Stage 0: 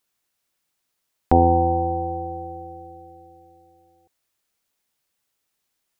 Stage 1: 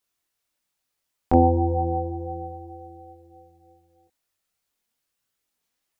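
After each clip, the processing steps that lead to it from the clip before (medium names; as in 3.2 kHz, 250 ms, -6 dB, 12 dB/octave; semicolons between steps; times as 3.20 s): dynamic bell 1.7 kHz, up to -4 dB, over -32 dBFS, Q 0.78; chorus voices 4, 0.64 Hz, delay 22 ms, depth 2.2 ms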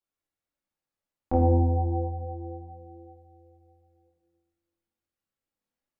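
treble shelf 2 kHz -11 dB; reverberation RT60 1.3 s, pre-delay 4 ms, DRR -1 dB; trim -8.5 dB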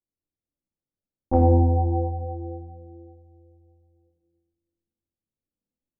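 level-controlled noise filter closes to 360 Hz, open at -19.5 dBFS; trim +4 dB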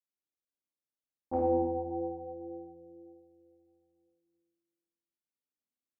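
high-pass 360 Hz 6 dB/octave; on a send: flutter echo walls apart 9.1 m, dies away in 0.59 s; on the sum: trim -8.5 dB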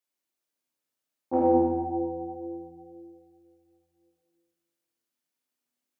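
high-pass 150 Hz 12 dB/octave; gated-style reverb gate 340 ms falling, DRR -1.5 dB; trim +5 dB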